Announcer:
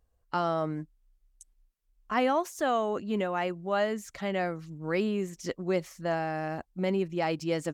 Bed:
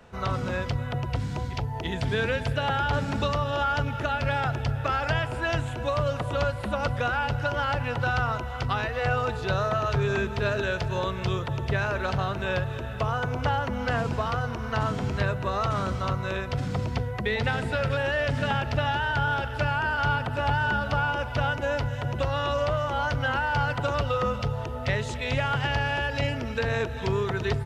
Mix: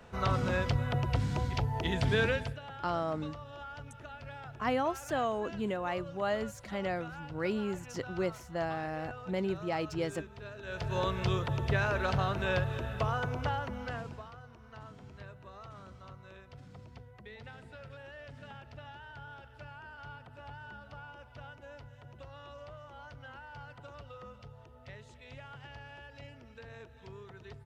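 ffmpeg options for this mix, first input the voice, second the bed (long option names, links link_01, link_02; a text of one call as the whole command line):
ffmpeg -i stem1.wav -i stem2.wav -filter_complex "[0:a]adelay=2500,volume=-4.5dB[link_01];[1:a]volume=15dB,afade=type=out:start_time=2.23:duration=0.36:silence=0.125893,afade=type=in:start_time=10.62:duration=0.4:silence=0.149624,afade=type=out:start_time=12.83:duration=1.49:silence=0.105925[link_02];[link_01][link_02]amix=inputs=2:normalize=0" out.wav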